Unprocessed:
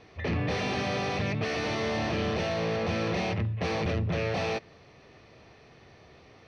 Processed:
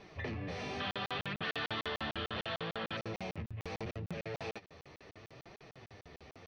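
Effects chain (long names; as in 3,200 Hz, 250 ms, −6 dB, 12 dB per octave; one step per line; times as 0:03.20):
flanger 0.72 Hz, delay 4.8 ms, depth 8.6 ms, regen +22%
downward compressor 12 to 1, threshold −40 dBFS, peak gain reduction 13 dB
0:00.80–0:02.97: drawn EQ curve 650 Hz 0 dB, 1,500 Hz +12 dB, 2,300 Hz +1 dB, 3,300 Hz +14 dB, 6,400 Hz −12 dB
regular buffer underruns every 0.15 s, samples 2,048, zero, from 0:00.91
level +3 dB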